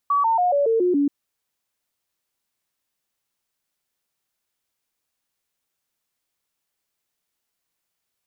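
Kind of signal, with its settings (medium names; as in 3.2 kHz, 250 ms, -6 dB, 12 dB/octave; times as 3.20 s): stepped sine 1.14 kHz down, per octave 3, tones 7, 0.14 s, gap 0.00 s -16 dBFS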